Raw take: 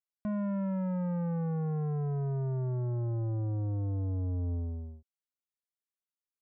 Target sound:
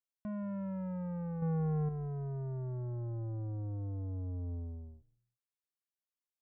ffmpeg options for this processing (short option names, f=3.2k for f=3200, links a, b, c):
-filter_complex "[0:a]asettb=1/sr,asplit=3[a][b][c];[a]atrim=end=1.424[d];[b]atrim=start=1.42:end=1.89,asetpts=PTS-STARTPTS,afade=t=in:d=0.004:c=qsin,afade=t=out:st=0.466:d=0.004:c=qsin,acontrast=54[e];[c]atrim=start=1.886[f];[d][e]acrossfade=d=0.004:c1=hsin:c2=qsin[g];[g][f]acrossfade=d=0.004:c1=qsin:c2=hsin,asplit=2[h][i];[i]asplit=2[j][k];[j]adelay=173,afreqshift=-100,volume=-23dB[l];[k]adelay=346,afreqshift=-200,volume=-33.5dB[m];[l][m]amix=inputs=2:normalize=0[n];[h][n]amix=inputs=2:normalize=0,volume=-6.5dB"